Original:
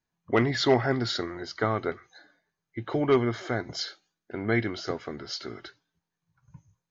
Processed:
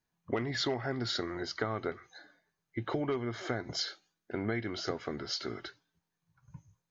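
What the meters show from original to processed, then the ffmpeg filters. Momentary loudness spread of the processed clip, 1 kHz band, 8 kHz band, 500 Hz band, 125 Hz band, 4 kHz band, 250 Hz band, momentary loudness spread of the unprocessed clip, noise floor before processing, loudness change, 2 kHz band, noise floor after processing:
12 LU, -8.0 dB, n/a, -8.5 dB, -7.5 dB, -3.0 dB, -7.5 dB, 17 LU, under -85 dBFS, -7.5 dB, -7.0 dB, under -85 dBFS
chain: -af "acompressor=threshold=-29dB:ratio=12"

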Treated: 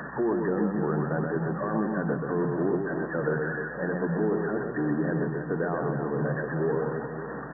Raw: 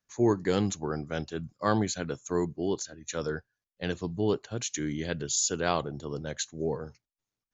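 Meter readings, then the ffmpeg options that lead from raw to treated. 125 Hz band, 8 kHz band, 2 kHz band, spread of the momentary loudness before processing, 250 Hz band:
+4.0 dB, n/a, +6.0 dB, 10 LU, +4.0 dB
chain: -filter_complex "[0:a]aeval=exprs='val(0)+0.5*0.0282*sgn(val(0))':c=same,afftfilt=real='re*between(b*sr/4096,120,1900)':imag='im*between(b*sr/4096,120,1900)':win_size=4096:overlap=0.75,bandreject=f=60:t=h:w=6,bandreject=f=120:t=h:w=6,bandreject=f=180:t=h:w=6,bandreject=f=240:t=h:w=6,asplit=2[a][b];[b]acompressor=threshold=-40dB:ratio=5,volume=0dB[c];[a][c]amix=inputs=2:normalize=0,alimiter=limit=-19.5dB:level=0:latency=1:release=60,aeval=exprs='val(0)+0.00141*(sin(2*PI*60*n/s)+sin(2*PI*2*60*n/s)/2+sin(2*PI*3*60*n/s)/3+sin(2*PI*4*60*n/s)/4+sin(2*PI*5*60*n/s)/5)':c=same,aecho=1:1:130|312|566.8|923.5|1423:0.631|0.398|0.251|0.158|0.1"

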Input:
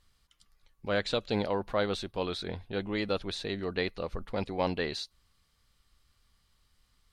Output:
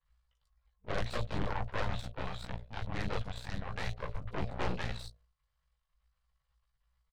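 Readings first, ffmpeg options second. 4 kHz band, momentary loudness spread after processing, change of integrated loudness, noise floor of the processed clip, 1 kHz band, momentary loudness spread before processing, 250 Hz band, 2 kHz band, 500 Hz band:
-9.0 dB, 6 LU, -6.0 dB, -82 dBFS, -3.0 dB, 7 LU, -8.5 dB, -4.5 dB, -10.5 dB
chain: -filter_complex "[0:a]aeval=exprs='if(lt(val(0),0),0.251*val(0),val(0))':c=same,bandreject=f=53.9:t=h:w=4,bandreject=f=107.8:t=h:w=4,bandreject=f=161.7:t=h:w=4,bandreject=f=215.6:t=h:w=4,bandreject=f=269.5:t=h:w=4,bandreject=f=323.4:t=h:w=4,bandreject=f=377.3:t=h:w=4,bandreject=f=431.2:t=h:w=4,bandreject=f=485.1:t=h:w=4,bandreject=f=539:t=h:w=4,bandreject=f=592.9:t=h:w=4,bandreject=f=646.8:t=h:w=4,bandreject=f=700.7:t=h:w=4,bandreject=f=754.6:t=h:w=4,flanger=delay=15.5:depth=4.2:speed=0.45,afreqshift=-60,acrossover=split=3900[a][b];[b]adelay=40[c];[a][c]amix=inputs=2:normalize=0,asoftclip=type=tanh:threshold=-29dB,highshelf=f=3.4k:g=-12,afftfilt=real='re*(1-between(b*sr/4096,190,460))':imag='im*(1-between(b*sr/4096,190,460))':win_size=4096:overlap=0.75,aeval=exprs='0.0631*(cos(1*acos(clip(val(0)/0.0631,-1,1)))-cos(1*PI/2))+0.00708*(cos(3*acos(clip(val(0)/0.0631,-1,1)))-cos(3*PI/2))+0.0224*(cos(8*acos(clip(val(0)/0.0631,-1,1)))-cos(8*PI/2))':c=same,volume=1dB"

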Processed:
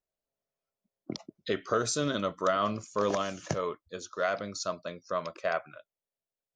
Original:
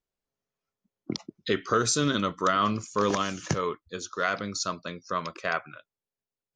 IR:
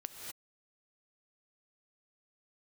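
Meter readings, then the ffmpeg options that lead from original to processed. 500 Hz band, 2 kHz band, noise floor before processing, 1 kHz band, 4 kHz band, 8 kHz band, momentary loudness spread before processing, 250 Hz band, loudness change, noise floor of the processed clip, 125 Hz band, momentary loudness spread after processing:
-0.5 dB, -5.5 dB, under -85 dBFS, -4.5 dB, -6.0 dB, -6.0 dB, 12 LU, -5.5 dB, -3.5 dB, under -85 dBFS, -6.0 dB, 14 LU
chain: -af "equalizer=f=620:t=o:w=0.54:g=11,volume=-6dB"

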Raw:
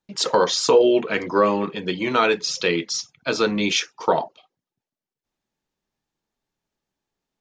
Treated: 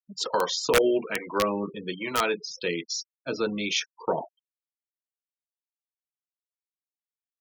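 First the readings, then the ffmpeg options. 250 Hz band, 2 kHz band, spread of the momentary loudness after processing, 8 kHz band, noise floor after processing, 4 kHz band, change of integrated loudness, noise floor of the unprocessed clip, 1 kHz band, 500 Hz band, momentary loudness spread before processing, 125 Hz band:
-7.0 dB, -5.5 dB, 11 LU, -5.5 dB, under -85 dBFS, -6.0 dB, -7.0 dB, under -85 dBFS, -7.0 dB, -7.5 dB, 10 LU, -7.0 dB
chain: -filter_complex "[0:a]acrossover=split=600[a][b];[a]aeval=exprs='val(0)*(1-0.5/2+0.5/2*cos(2*PI*1.2*n/s))':c=same[c];[b]aeval=exprs='val(0)*(1-0.5/2-0.5/2*cos(2*PI*1.2*n/s))':c=same[d];[c][d]amix=inputs=2:normalize=0,afftfilt=real='re*gte(hypot(re,im),0.0316)':imag='im*gte(hypot(re,im),0.0316)':win_size=1024:overlap=0.75,aeval=exprs='(mod(2.66*val(0)+1,2)-1)/2.66':c=same,volume=-5dB"

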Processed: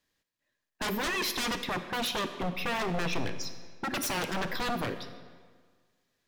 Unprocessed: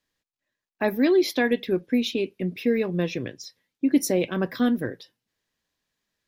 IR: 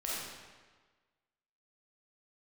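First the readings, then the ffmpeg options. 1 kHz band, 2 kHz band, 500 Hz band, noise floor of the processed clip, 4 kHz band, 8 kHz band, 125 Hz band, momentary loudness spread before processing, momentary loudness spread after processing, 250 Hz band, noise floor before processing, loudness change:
+3.0 dB, -1.0 dB, -11.5 dB, -84 dBFS, +1.0 dB, -1.0 dB, -5.5 dB, 13 LU, 10 LU, -13.5 dB, under -85 dBFS, -7.5 dB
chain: -filter_complex "[0:a]aeval=exprs='0.0422*(abs(mod(val(0)/0.0422+3,4)-2)-1)':c=same,asplit=2[a][b];[1:a]atrim=start_sample=2205,asetrate=37485,aresample=44100[c];[b][c]afir=irnorm=-1:irlink=0,volume=-13dB[d];[a][d]amix=inputs=2:normalize=0"

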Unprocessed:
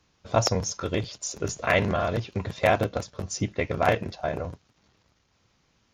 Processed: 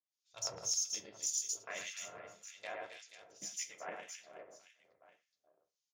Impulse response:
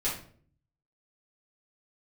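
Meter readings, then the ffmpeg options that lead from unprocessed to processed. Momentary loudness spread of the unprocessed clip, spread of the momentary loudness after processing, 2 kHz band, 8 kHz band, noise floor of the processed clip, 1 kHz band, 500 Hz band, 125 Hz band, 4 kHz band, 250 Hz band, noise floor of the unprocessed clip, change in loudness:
10 LU, 20 LU, -18.0 dB, -2.0 dB, under -85 dBFS, -22.0 dB, -24.5 dB, -36.5 dB, -8.5 dB, -31.0 dB, -69 dBFS, -12.5 dB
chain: -filter_complex "[0:a]lowpass=f=8.6k:w=0.5412,lowpass=f=8.6k:w=1.3066,aderivative,afwtdn=0.00501,aecho=1:1:110|264|479.6|781.4|1204:0.631|0.398|0.251|0.158|0.1,asplit=2[a][b];[1:a]atrim=start_sample=2205,asetrate=33075,aresample=44100[c];[b][c]afir=irnorm=-1:irlink=0,volume=-12.5dB[d];[a][d]amix=inputs=2:normalize=0,acrossover=split=2000[e][f];[e]aeval=exprs='val(0)*(1-1/2+1/2*cos(2*PI*1.8*n/s))':c=same[g];[f]aeval=exprs='val(0)*(1-1/2-1/2*cos(2*PI*1.8*n/s))':c=same[h];[g][h]amix=inputs=2:normalize=0,equalizer=f=1.3k:w=0.32:g=-10.5,volume=3.5dB"

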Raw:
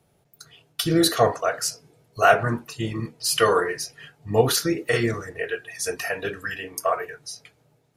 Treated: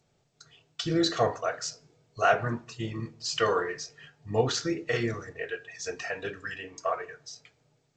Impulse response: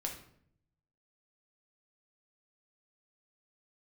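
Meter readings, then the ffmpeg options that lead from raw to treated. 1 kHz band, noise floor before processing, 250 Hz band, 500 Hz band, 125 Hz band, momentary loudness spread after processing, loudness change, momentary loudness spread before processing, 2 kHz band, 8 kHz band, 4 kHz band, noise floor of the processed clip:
-6.5 dB, -65 dBFS, -6.0 dB, -6.5 dB, -6.0 dB, 14 LU, -6.5 dB, 14 LU, -6.5 dB, -10.0 dB, -6.5 dB, -71 dBFS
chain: -filter_complex "[0:a]asplit=2[a][b];[1:a]atrim=start_sample=2205,adelay=8[c];[b][c]afir=irnorm=-1:irlink=0,volume=-17.5dB[d];[a][d]amix=inputs=2:normalize=0,volume=-6.5dB" -ar 16000 -c:a g722

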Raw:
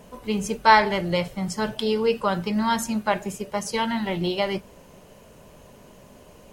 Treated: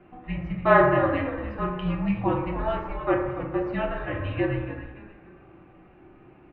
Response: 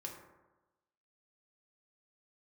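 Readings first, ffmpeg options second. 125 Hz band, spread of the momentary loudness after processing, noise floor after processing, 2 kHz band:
+3.5 dB, 14 LU, -53 dBFS, -2.5 dB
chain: -filter_complex "[0:a]highpass=f=240:t=q:w=0.5412,highpass=f=240:t=q:w=1.307,lowpass=f=2.9k:t=q:w=0.5176,lowpass=f=2.9k:t=q:w=0.7071,lowpass=f=2.9k:t=q:w=1.932,afreqshift=-260,equalizer=f=1.2k:w=2.9:g=4.5,asplit=5[a][b][c][d][e];[b]adelay=288,afreqshift=-61,volume=-11dB[f];[c]adelay=576,afreqshift=-122,volume=-20.1dB[g];[d]adelay=864,afreqshift=-183,volume=-29.2dB[h];[e]adelay=1152,afreqshift=-244,volume=-38.4dB[i];[a][f][g][h][i]amix=inputs=5:normalize=0[j];[1:a]atrim=start_sample=2205[k];[j][k]afir=irnorm=-1:irlink=0"

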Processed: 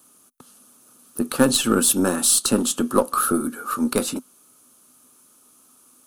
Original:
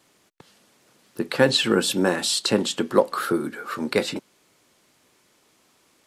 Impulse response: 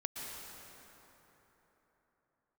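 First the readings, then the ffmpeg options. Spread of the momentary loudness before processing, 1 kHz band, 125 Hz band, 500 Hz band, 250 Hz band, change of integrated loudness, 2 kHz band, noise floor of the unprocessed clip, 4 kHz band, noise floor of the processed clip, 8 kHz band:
12 LU, +3.0 dB, 0.0 dB, -2.0 dB, +3.5 dB, +2.5 dB, -3.5 dB, -63 dBFS, -2.0 dB, -56 dBFS, +10.5 dB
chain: -af "aeval=exprs='0.708*(cos(1*acos(clip(val(0)/0.708,-1,1)))-cos(1*PI/2))+0.0282*(cos(8*acos(clip(val(0)/0.708,-1,1)))-cos(8*PI/2))':c=same,equalizer=f=250:t=o:w=0.33:g=12,equalizer=f=1.25k:t=o:w=0.33:g=11,equalizer=f=2k:t=o:w=0.33:g=-12,equalizer=f=6.3k:t=o:w=0.33:g=10,equalizer=f=10k:t=o:w=0.33:g=8,aexciter=amount=5.1:drive=4.6:freq=8.5k,volume=-2.5dB"

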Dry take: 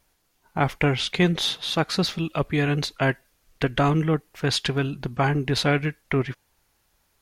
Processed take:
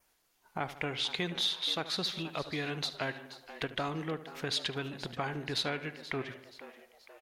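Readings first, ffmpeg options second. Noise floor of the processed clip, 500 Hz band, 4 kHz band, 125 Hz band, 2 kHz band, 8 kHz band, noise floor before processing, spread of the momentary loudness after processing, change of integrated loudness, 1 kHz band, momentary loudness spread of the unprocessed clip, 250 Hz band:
-72 dBFS, -12.5 dB, -5.5 dB, -17.5 dB, -10.0 dB, -9.0 dB, -69 dBFS, 14 LU, -10.5 dB, -11.5 dB, 6 LU, -15.0 dB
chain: -filter_complex "[0:a]lowshelf=f=220:g=-11,asplit=2[a][b];[b]adelay=74,lowpass=f=4k:p=1,volume=-15dB,asplit=2[c][d];[d]adelay=74,lowpass=f=4k:p=1,volume=0.49,asplit=2[e][f];[f]adelay=74,lowpass=f=4k:p=1,volume=0.49,asplit=2[g][h];[h]adelay=74,lowpass=f=4k:p=1,volume=0.49,asplit=2[i][j];[j]adelay=74,lowpass=f=4k:p=1,volume=0.49[k];[c][e][g][i][k]amix=inputs=5:normalize=0[l];[a][l]amix=inputs=2:normalize=0,acompressor=threshold=-35dB:ratio=2,asplit=2[m][n];[n]asplit=4[o][p][q][r];[o]adelay=479,afreqshift=110,volume=-14.5dB[s];[p]adelay=958,afreqshift=220,volume=-20.9dB[t];[q]adelay=1437,afreqshift=330,volume=-27.3dB[u];[r]adelay=1916,afreqshift=440,volume=-33.6dB[v];[s][t][u][v]amix=inputs=4:normalize=0[w];[m][w]amix=inputs=2:normalize=0,adynamicequalizer=threshold=0.00355:dfrequency=3800:dqfactor=3.2:tfrequency=3800:tqfactor=3.2:attack=5:release=100:ratio=0.375:range=3:mode=boostabove:tftype=bell,volume=-3dB"

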